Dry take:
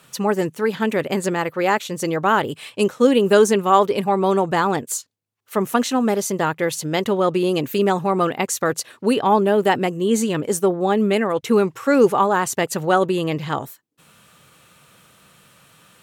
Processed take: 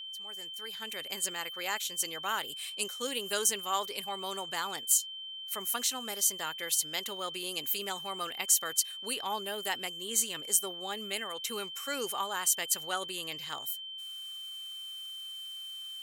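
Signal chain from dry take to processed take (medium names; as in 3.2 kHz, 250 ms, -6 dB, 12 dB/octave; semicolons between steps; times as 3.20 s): fade-in on the opening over 1.30 s; pre-emphasis filter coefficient 0.97; whistle 3.1 kHz -40 dBFS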